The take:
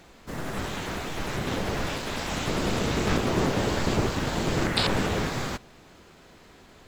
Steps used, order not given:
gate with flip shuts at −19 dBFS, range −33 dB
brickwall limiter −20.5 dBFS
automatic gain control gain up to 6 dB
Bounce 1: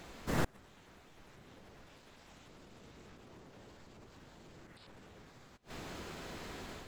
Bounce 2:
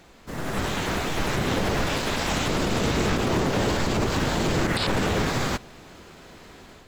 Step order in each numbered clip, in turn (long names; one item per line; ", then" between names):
brickwall limiter, then automatic gain control, then gate with flip
brickwall limiter, then gate with flip, then automatic gain control